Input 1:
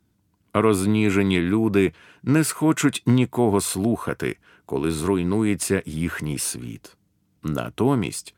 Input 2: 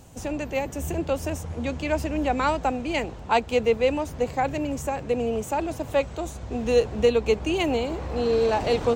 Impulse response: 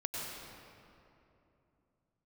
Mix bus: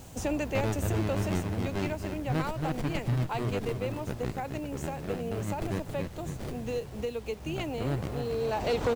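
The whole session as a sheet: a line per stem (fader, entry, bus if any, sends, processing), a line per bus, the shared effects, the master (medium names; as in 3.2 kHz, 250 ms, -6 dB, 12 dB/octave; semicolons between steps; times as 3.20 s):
-14.0 dB, 0.00 s, no send, echo send -6.5 dB, local Wiener filter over 41 samples; graphic EQ 125/250/1000/2000/4000/8000 Hz +9/-11/+6/+8/+11/+6 dB; sliding maximum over 33 samples
+2.0 dB, 0.00 s, no send, no echo send, compression 2.5:1, threshold -25 dBFS, peak gain reduction 7.5 dB; auto duck -10 dB, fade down 1.90 s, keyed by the first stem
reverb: none
echo: feedback delay 274 ms, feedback 50%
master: bit crusher 9-bit; hard clipper -22 dBFS, distortion -16 dB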